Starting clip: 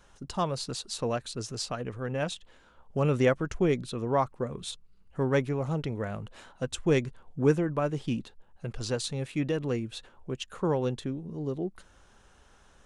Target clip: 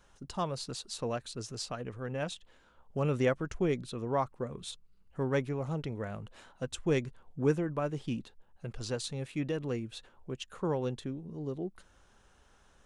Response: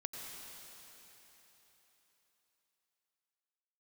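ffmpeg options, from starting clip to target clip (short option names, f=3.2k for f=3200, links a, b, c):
-af "volume=-4.5dB"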